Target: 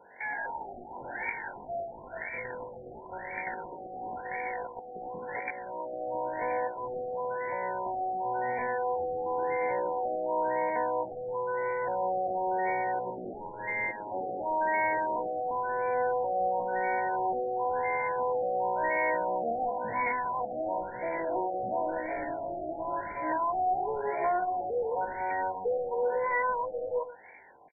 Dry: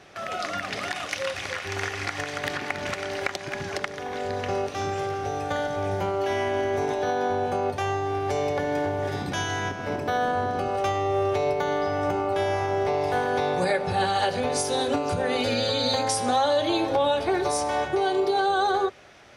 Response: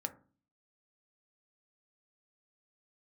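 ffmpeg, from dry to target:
-filter_complex "[0:a]equalizer=f=100:t=o:w=0.67:g=-10,equalizer=f=1k:t=o:w=0.67:g=-9,equalizer=f=2.5k:t=o:w=0.67:g=7,asetrate=56007,aresample=44100,crystalizer=i=5:c=0,asoftclip=type=tanh:threshold=-10dB,atempo=0.55,asplit=2[a][b];[b]highpass=f=720:p=1,volume=13dB,asoftclip=type=tanh:threshold=-10dB[c];[a][c]amix=inputs=2:normalize=0,lowpass=f=3.5k:p=1,volume=-6dB,asplit=2[d][e];[e]aecho=0:1:118:0.178[f];[d][f]amix=inputs=2:normalize=0,aresample=11025,aresample=44100,asuperstop=centerf=1200:order=12:qfactor=3.9,afftfilt=real='re*lt(b*sr/1024,790*pow(2400/790,0.5+0.5*sin(2*PI*0.96*pts/sr)))':imag='im*lt(b*sr/1024,790*pow(2400/790,0.5+0.5*sin(2*PI*0.96*pts/sr)))':win_size=1024:overlap=0.75,volume=-7dB"

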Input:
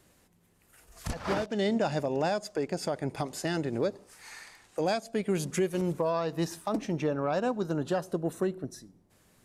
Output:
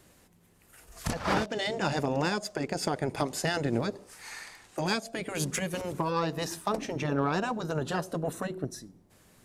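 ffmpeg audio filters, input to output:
-af "afftfilt=real='re*lt(hypot(re,im),0.224)':imag='im*lt(hypot(re,im),0.224)':win_size=1024:overlap=0.75,aeval=exprs='0.112*(cos(1*acos(clip(val(0)/0.112,-1,1)))-cos(1*PI/2))+0.00282*(cos(7*acos(clip(val(0)/0.112,-1,1)))-cos(7*PI/2))':c=same,volume=5.5dB"

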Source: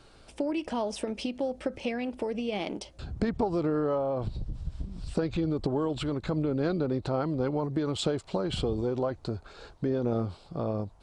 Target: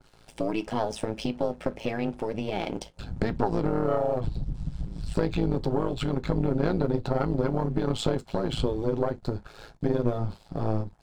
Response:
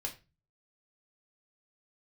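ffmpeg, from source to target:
-filter_complex "[0:a]aeval=exprs='(tanh(8.91*val(0)+0.45)-tanh(0.45))/8.91':c=same,aeval=exprs='sgn(val(0))*max(abs(val(0))-0.00119,0)':c=same,tremolo=f=110:d=0.889,asplit=2[a][b];[1:a]atrim=start_sample=2205,afade=t=out:st=0.15:d=0.01,atrim=end_sample=7056,asetrate=70560,aresample=44100[c];[b][c]afir=irnorm=-1:irlink=0,volume=-2.5dB[d];[a][d]amix=inputs=2:normalize=0,adynamicequalizer=threshold=0.00251:dfrequency=1900:dqfactor=0.7:tfrequency=1900:tqfactor=0.7:attack=5:release=100:ratio=0.375:range=1.5:mode=cutabove:tftype=highshelf,volume=6.5dB"

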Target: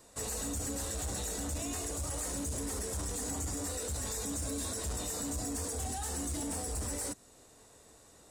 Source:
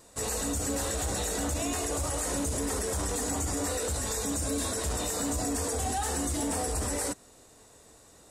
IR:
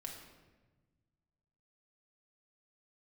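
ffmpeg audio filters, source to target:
-filter_complex "[0:a]acrossover=split=270|3900[a][b][c];[b]alimiter=level_in=7.5dB:limit=-24dB:level=0:latency=1:release=291,volume=-7.5dB[d];[a][d][c]amix=inputs=3:normalize=0,asoftclip=type=tanh:threshold=-26dB,volume=-3dB"

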